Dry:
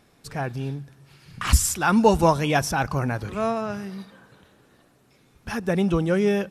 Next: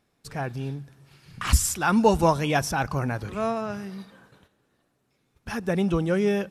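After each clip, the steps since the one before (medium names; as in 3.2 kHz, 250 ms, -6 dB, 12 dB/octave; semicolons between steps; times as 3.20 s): gate -53 dBFS, range -10 dB; trim -2 dB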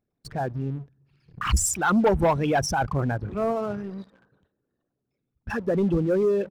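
resonances exaggerated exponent 2; waveshaping leveller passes 2; trim -5.5 dB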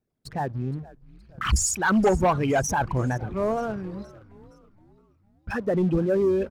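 wow and flutter 140 cents; frequency-shifting echo 468 ms, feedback 49%, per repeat -95 Hz, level -20 dB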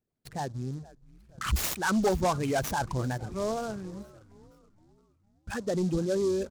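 delay time shaken by noise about 5.3 kHz, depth 0.036 ms; trim -5.5 dB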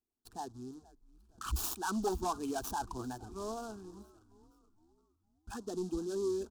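static phaser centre 550 Hz, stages 6; trim -5 dB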